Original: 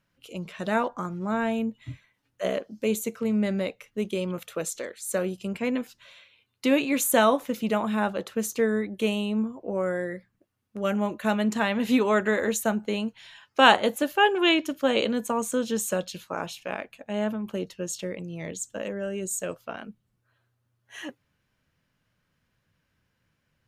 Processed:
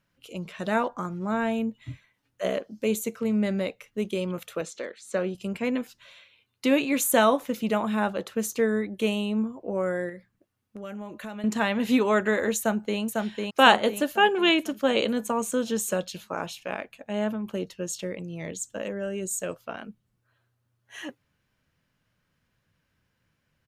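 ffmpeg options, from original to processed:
-filter_complex "[0:a]asettb=1/sr,asplit=3[s0][s1][s2];[s0]atrim=end=4.614[s3];[s1]atrim=start=4.61:end=5.35,asetpts=PTS-STARTPTS,afade=t=in:d=0.004:c=qsin,afade=t=out:st=0.736:d=0.004:c=qsin,highpass=130,lowpass=4700[s4];[s2]atrim=start=5.346[s5];[s3][s4]acrossfade=d=0.004:c1=hsin:c2=qsin[s6];[s6][s5]acrossfade=d=0.004:c1=qsin:c2=hsin,asettb=1/sr,asplit=3[s7][s8][s9];[s7]atrim=end=10.094[s10];[s8]atrim=start=10.09:end=11.44,asetpts=PTS-STARTPTS,afade=t=in:d=0.004:c=qsin,afade=t=out:st=1.346:d=0.004:c=qsin,acompressor=threshold=0.0158:ratio=4:attack=3.2:release=140:knee=1:detection=peak[s11];[s9]atrim=start=11.436[s12];[s10][s11]acrossfade=d=0.004:c1=hsin:c2=qsin[s13];[s13][s12]acrossfade=d=0.004:c1=qsin:c2=hsin,asplit=2[s14][s15];[s15]afade=t=in:st=12.58:d=0.01,afade=t=out:st=13:d=0.01,aecho=0:1:500|1000|1500|2000|2500|3000|3500:0.707946|0.353973|0.176986|0.0884932|0.0442466|0.0221233|0.0110617[s16];[s14][s16]amix=inputs=2:normalize=0"

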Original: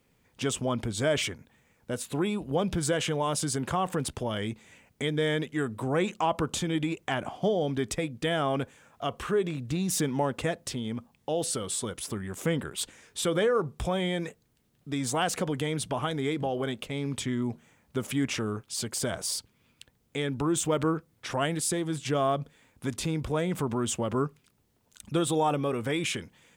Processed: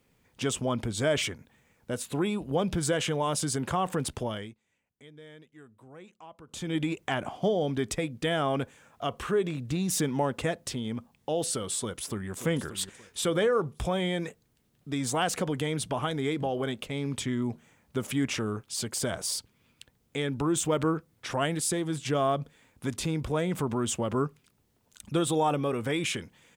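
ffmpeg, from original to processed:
-filter_complex "[0:a]asplit=2[s0][s1];[s1]afade=t=in:st=11.78:d=0.01,afade=t=out:st=12.31:d=0.01,aecho=0:1:580|1160|1740:0.281838|0.0845515|0.0253654[s2];[s0][s2]amix=inputs=2:normalize=0,asplit=3[s3][s4][s5];[s3]atrim=end=4.55,asetpts=PTS-STARTPTS,afade=t=out:st=4.24:d=0.31:silence=0.0794328[s6];[s4]atrim=start=4.55:end=6.47,asetpts=PTS-STARTPTS,volume=0.0794[s7];[s5]atrim=start=6.47,asetpts=PTS-STARTPTS,afade=t=in:d=0.31:silence=0.0794328[s8];[s6][s7][s8]concat=n=3:v=0:a=1"

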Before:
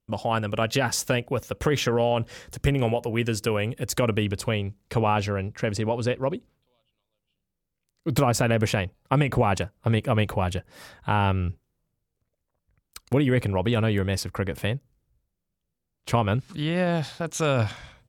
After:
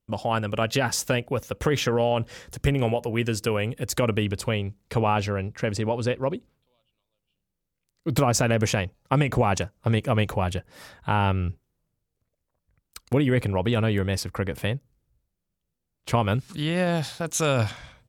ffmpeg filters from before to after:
-filter_complex "[0:a]asettb=1/sr,asplit=3[s0][s1][s2];[s0]atrim=end=8.294[s3];[s1]atrim=start=8.29:end=10.38,asetpts=PTS-STARTPTS,afade=t=in:d=0.004:c=qsin,afade=t=out:st=2.086:d=0.004:c=qsin,equalizer=f=6200:t=o:w=0.45:g=7.5[s4];[s2]atrim=start=10.376[s5];[s3][s4]acrossfade=d=0.004:c1=hsin:c2=qsin[s6];[s6][s5]acrossfade=d=0.004:c1=qsin:c2=hsin,asettb=1/sr,asplit=3[s7][s8][s9];[s7]atrim=end=16.204[s10];[s8]atrim=start=16.2:end=17.7,asetpts=PTS-STARTPTS,afade=t=in:d=0.004:c=qsin,afade=t=out:st=1.496:d=0.004:c=qsin,highshelf=f=5800:g=9.5[s11];[s9]atrim=start=17.696[s12];[s10][s11]acrossfade=d=0.004:c1=hsin:c2=qsin[s13];[s13][s12]acrossfade=d=0.004:c1=qsin:c2=hsin"

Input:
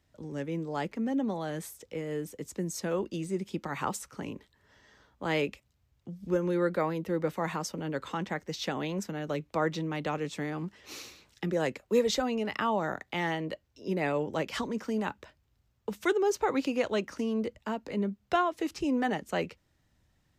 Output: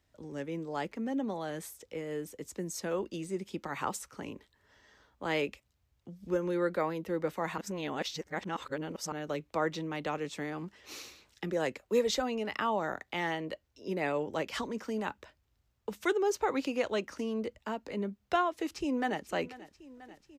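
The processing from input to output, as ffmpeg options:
-filter_complex "[0:a]asplit=2[s0][s1];[s1]afade=t=in:st=18.5:d=0.01,afade=t=out:st=19.25:d=0.01,aecho=0:1:490|980|1470|1960|2450|2940|3430|3920|4410|4900:0.133352|0.100014|0.0750106|0.0562579|0.0421935|0.0316451|0.0237338|0.0178004|0.0133503|0.0100127[s2];[s0][s2]amix=inputs=2:normalize=0,asplit=3[s3][s4][s5];[s3]atrim=end=7.582[s6];[s4]atrim=start=7.578:end=9.122,asetpts=PTS-STARTPTS,areverse[s7];[s5]atrim=start=9.118[s8];[s6][s7]acrossfade=d=0.004:c1=hsin:c2=hsin[s9];[s9][s8]acrossfade=d=0.004:c1=hsin:c2=hsin,equalizer=f=150:w=0.95:g=-5,volume=0.841"

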